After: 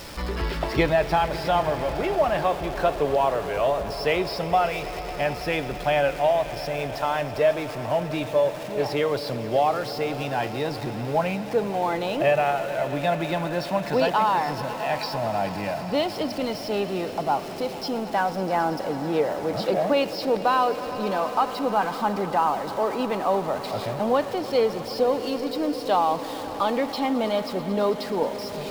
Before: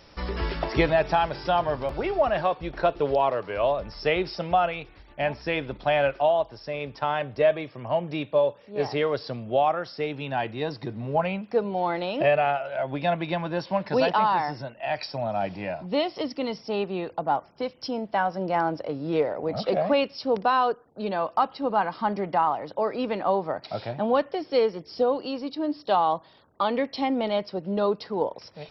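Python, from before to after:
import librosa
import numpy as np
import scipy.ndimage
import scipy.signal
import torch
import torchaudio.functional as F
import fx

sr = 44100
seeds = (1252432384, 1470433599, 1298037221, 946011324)

y = x + 0.5 * 10.0 ** (-35.0 / 20.0) * np.sign(x)
y = fx.echo_swell(y, sr, ms=109, loudest=5, wet_db=-18.0)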